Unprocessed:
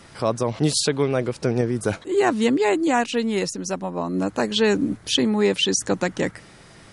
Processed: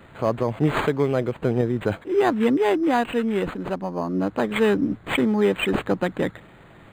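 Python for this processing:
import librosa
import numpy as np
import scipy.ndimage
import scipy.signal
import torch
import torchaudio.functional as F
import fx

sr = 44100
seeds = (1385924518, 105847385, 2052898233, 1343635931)

y = np.interp(np.arange(len(x)), np.arange(len(x))[::8], x[::8])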